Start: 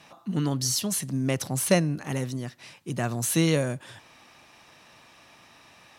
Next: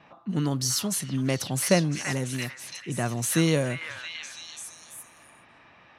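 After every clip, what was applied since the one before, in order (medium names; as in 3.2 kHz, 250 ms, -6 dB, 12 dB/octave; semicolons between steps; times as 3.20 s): level-controlled noise filter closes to 2.1 kHz, open at -23.5 dBFS; repeats whose band climbs or falls 336 ms, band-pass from 1.7 kHz, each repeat 0.7 oct, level -0.5 dB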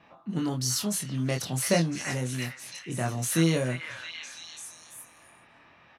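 doubling 24 ms -4 dB; trim -3.5 dB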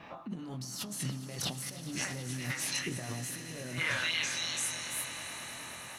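compressor with a negative ratio -39 dBFS, ratio -1; echo with a slow build-up 105 ms, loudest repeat 5, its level -17 dB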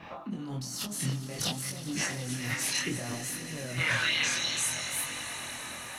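chorus voices 2, 0.58 Hz, delay 24 ms, depth 4.2 ms; trim +7 dB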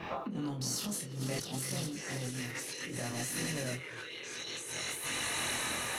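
compressor with a negative ratio -39 dBFS, ratio -1; band noise 310–530 Hz -53 dBFS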